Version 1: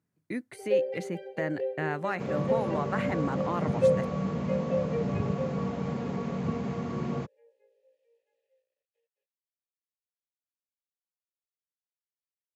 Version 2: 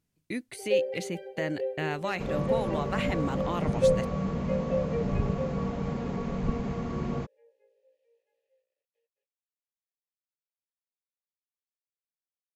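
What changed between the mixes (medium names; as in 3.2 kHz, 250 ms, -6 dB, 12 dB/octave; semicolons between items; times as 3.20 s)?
speech: add resonant high shelf 2.2 kHz +7.5 dB, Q 1.5; master: remove high-pass 92 Hz 24 dB/octave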